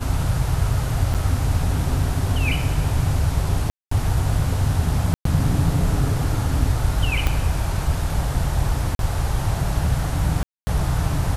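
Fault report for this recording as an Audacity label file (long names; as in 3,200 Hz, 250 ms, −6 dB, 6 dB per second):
1.140000	1.150000	drop-out 6.1 ms
3.700000	3.910000	drop-out 214 ms
5.140000	5.250000	drop-out 113 ms
7.270000	7.270000	click −7 dBFS
8.950000	8.990000	drop-out 42 ms
10.430000	10.670000	drop-out 240 ms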